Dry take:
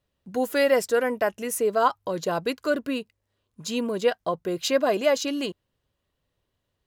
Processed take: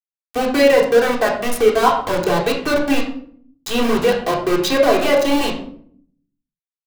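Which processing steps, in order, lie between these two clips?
bin magnitudes rounded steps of 15 dB; high shelf 7800 Hz -4 dB; in parallel at +1 dB: compressor 12:1, threshold -29 dBFS, peak gain reduction 14 dB; on the sum: sample gate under -22.5 dBFS; reverb RT60 0.60 s, pre-delay 3 ms, DRR -2.5 dB; gain +1.5 dB

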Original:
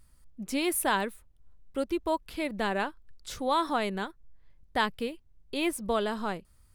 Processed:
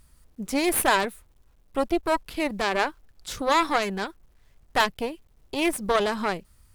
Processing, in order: requantised 12-bit, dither none; added harmonics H 3 -22 dB, 6 -17 dB, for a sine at -13 dBFS; gain +7 dB

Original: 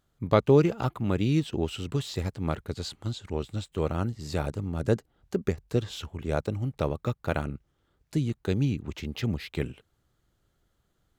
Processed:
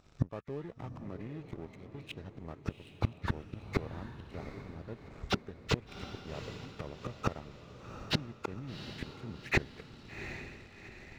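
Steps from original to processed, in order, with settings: nonlinear frequency compression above 1100 Hz 1.5:1; in parallel at 0 dB: negative-ratio compressor -26 dBFS, ratio -0.5; on the sum: flipped gate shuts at -23 dBFS, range -34 dB; sample leveller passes 2; on a send: diffused feedback echo 0.757 s, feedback 47%, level -10 dB; on the sum: gain +4.5 dB

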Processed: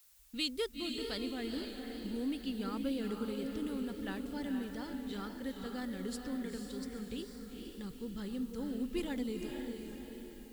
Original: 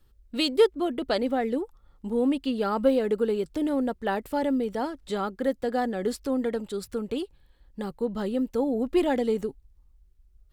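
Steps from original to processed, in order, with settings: passive tone stack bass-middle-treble 6-0-2; low-pass opened by the level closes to 2200 Hz, open at -44.5 dBFS; diffused feedback echo 0.474 s, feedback 51%, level -4.5 dB; expander -58 dBFS; added noise blue -72 dBFS; wow and flutter 29 cents; gain +8.5 dB

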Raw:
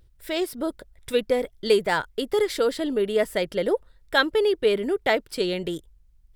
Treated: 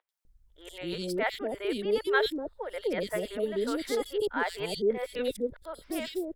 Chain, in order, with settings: whole clip reversed; three bands offset in time mids, highs, lows 90/250 ms, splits 570/3000 Hz; gain -5 dB

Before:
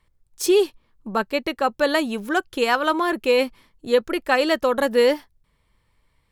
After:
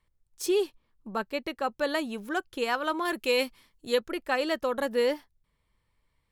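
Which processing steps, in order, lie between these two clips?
3.05–4 high shelf 2300 Hz +9 dB; gain -8.5 dB

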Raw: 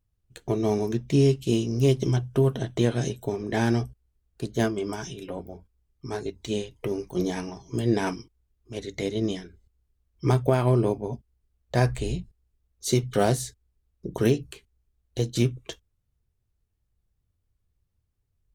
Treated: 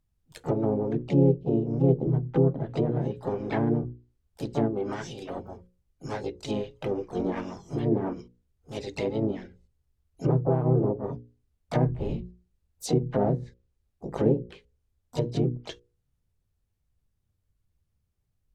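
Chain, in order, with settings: harmoniser +4 st -4 dB, +12 st -15 dB; notches 60/120/180/240/300/360/420/480/540 Hz; treble ducked by the level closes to 600 Hz, closed at -19.5 dBFS; gain -1.5 dB

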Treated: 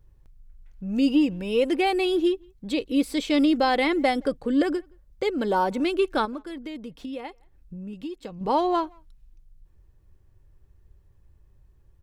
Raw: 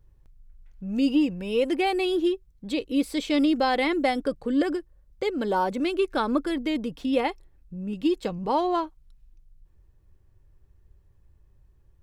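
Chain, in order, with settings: 6.25–8.41 compressor 3:1, threshold -38 dBFS, peak gain reduction 14.5 dB; speakerphone echo 0.17 s, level -29 dB; gain +1.5 dB

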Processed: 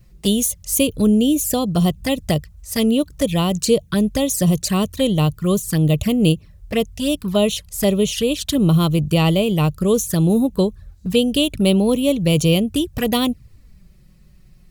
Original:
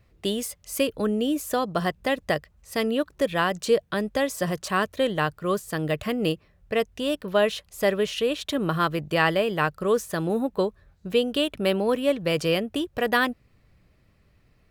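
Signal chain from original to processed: tone controls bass +14 dB, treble +14 dB; envelope flanger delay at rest 6.3 ms, full sweep at -17.5 dBFS; gain +3.5 dB

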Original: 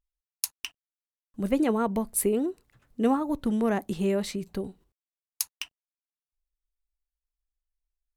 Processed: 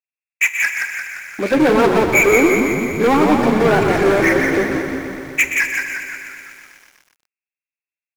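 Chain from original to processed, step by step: nonlinear frequency compression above 1400 Hz 4:1; HPF 310 Hz 24 dB/oct; sample leveller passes 5; on a send: frequency-shifting echo 0.173 s, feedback 48%, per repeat -62 Hz, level -4 dB; on the sum: Schroeder reverb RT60 0.82 s, combs from 26 ms, DRR 14 dB; lo-fi delay 0.123 s, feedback 80%, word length 7-bit, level -10 dB; gain -1 dB

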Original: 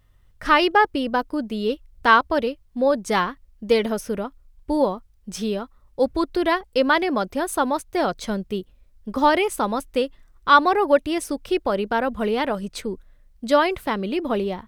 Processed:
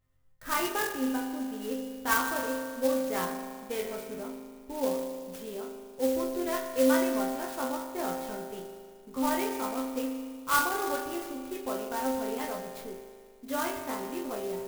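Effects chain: resonator bank F2 fifth, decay 0.36 s; spring tank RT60 2 s, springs 38 ms, chirp 25 ms, DRR 5 dB; clock jitter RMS 0.059 ms

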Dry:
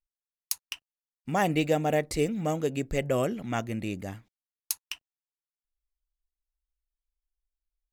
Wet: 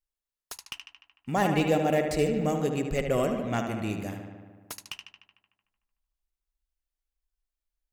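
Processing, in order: 3.89–4.87 high shelf 9800 Hz +7 dB; darkening echo 75 ms, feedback 73%, low-pass 4000 Hz, level -6.5 dB; slew limiter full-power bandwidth 150 Hz

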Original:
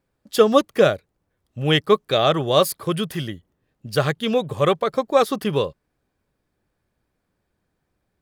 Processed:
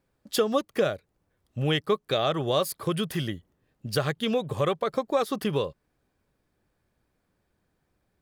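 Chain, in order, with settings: compressor 2.5:1, threshold -25 dBFS, peak gain reduction 11 dB

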